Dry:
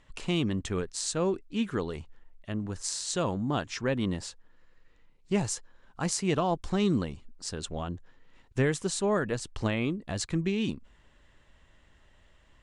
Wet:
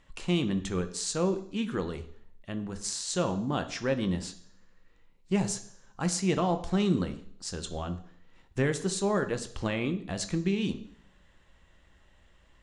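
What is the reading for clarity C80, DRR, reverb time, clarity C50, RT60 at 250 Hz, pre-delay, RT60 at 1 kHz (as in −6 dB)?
16.5 dB, 8.5 dB, 0.55 s, 13.5 dB, 0.65 s, 3 ms, 0.55 s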